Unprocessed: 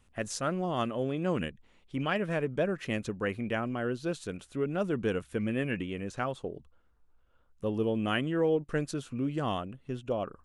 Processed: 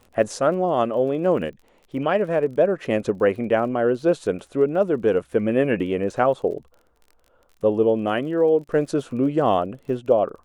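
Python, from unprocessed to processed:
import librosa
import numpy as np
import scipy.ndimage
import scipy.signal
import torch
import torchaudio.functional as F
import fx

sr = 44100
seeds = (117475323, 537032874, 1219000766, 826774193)

y = fx.peak_eq(x, sr, hz=560.0, db=14.5, octaves=2.3)
y = fx.rider(y, sr, range_db=5, speed_s=0.5)
y = fx.dmg_crackle(y, sr, seeds[0], per_s=30.0, level_db=-38.0)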